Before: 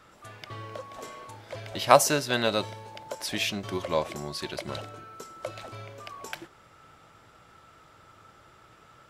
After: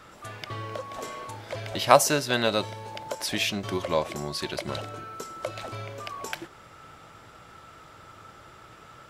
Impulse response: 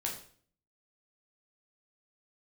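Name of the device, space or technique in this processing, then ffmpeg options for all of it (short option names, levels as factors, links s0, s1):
parallel compression: -filter_complex "[0:a]asplit=2[s0][s1];[s1]acompressor=threshold=0.0112:ratio=6,volume=1[s2];[s0][s2]amix=inputs=2:normalize=0"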